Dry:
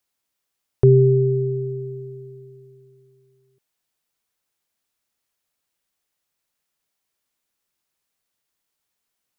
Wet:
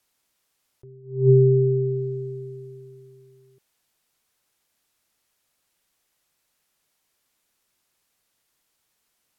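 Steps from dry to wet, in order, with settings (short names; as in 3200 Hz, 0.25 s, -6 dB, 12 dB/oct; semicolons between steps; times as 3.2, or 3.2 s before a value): treble ducked by the level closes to 670 Hz, closed at -20 dBFS; attack slew limiter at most 130 dB/s; gain +7 dB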